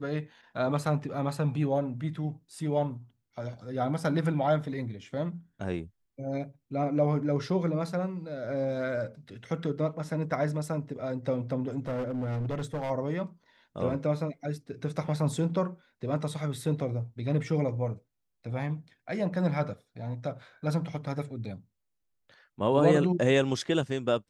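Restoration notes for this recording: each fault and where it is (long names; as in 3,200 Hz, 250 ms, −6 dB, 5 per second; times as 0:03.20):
0:11.87–0:12.91: clipping −28.5 dBFS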